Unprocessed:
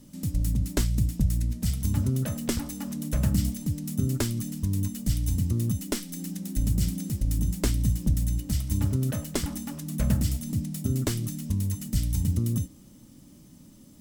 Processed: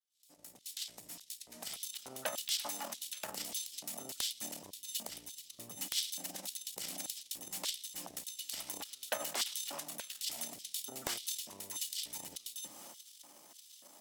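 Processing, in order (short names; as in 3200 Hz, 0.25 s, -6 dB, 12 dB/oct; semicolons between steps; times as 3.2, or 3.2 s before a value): opening faded in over 2.28 s; 4.32–6.36 low shelf 150 Hz +11 dB; de-hum 72.65 Hz, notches 3; dynamic EQ 3200 Hz, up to +4 dB, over -51 dBFS, Q 0.87; transient shaper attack -10 dB, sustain +9 dB; compressor 2.5:1, threshold -33 dBFS, peak gain reduction 12.5 dB; LFO high-pass square 1.7 Hz 770–3500 Hz; wrapped overs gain 20 dB; gain +1 dB; Opus 96 kbps 48000 Hz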